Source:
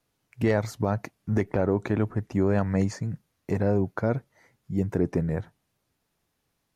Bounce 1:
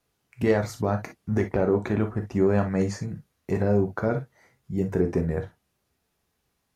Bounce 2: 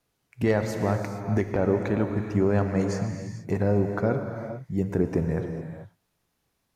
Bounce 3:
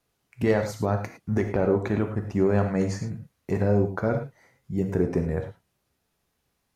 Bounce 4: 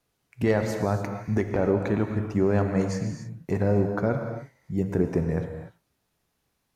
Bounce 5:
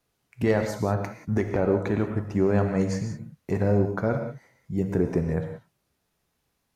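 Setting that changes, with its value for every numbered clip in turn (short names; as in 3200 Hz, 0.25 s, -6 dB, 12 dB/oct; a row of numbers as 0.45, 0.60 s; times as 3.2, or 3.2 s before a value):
non-linear reverb, gate: 80, 480, 130, 320, 210 ms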